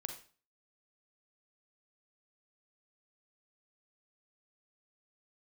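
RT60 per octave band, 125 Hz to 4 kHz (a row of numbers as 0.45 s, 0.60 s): 0.45 s, 0.45 s, 0.40 s, 0.40 s, 0.40 s, 0.40 s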